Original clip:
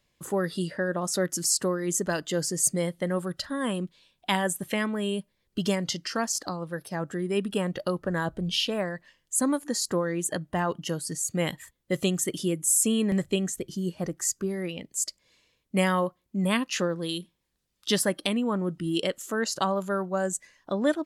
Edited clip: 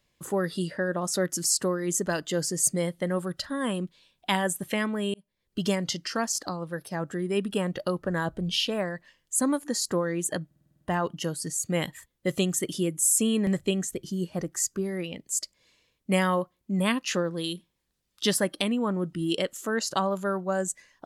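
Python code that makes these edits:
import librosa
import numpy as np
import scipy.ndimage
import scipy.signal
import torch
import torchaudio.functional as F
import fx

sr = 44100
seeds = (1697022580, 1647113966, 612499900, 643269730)

y = fx.edit(x, sr, fx.fade_in_span(start_s=5.14, length_s=0.5),
    fx.stutter(start_s=10.46, slice_s=0.05, count=8), tone=tone)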